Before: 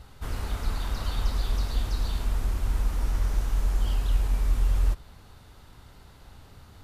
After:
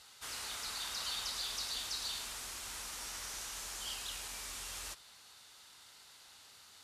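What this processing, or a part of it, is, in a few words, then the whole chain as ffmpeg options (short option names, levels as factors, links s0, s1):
piezo pickup straight into a mixer: -af "lowpass=7800,aderivative,volume=2.82"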